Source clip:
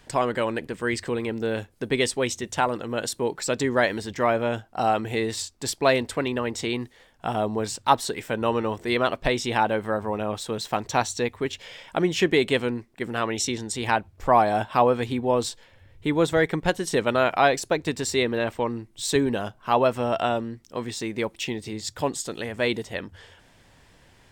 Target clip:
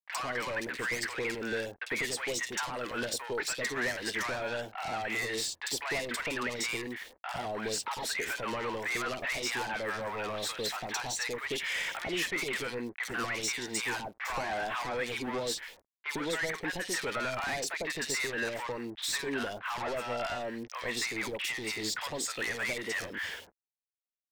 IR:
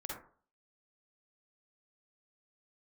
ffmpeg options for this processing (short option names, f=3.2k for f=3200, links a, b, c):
-filter_complex "[0:a]asplit=2[a][b];[b]highpass=f=720:p=1,volume=18dB,asoftclip=type=tanh:threshold=-4.5dB[c];[a][c]amix=inputs=2:normalize=0,lowpass=f=6.2k:p=1,volume=-6dB,agate=range=-33dB:threshold=-38dB:ratio=3:detection=peak,highshelf=f=4.3k:g=5.5,aeval=exprs='val(0)*gte(abs(val(0)),0.00668)':c=same,acompressor=threshold=-26dB:ratio=6,equalizer=f=125:t=o:w=1:g=-6,equalizer=f=2k:t=o:w=1:g=10,equalizer=f=8k:t=o:w=1:g=-3,asoftclip=type=tanh:threshold=-25.5dB,acrossover=split=820|3000[d][e][f];[f]adelay=50[g];[d]adelay=100[h];[h][e][g]amix=inputs=3:normalize=0,volume=-2dB"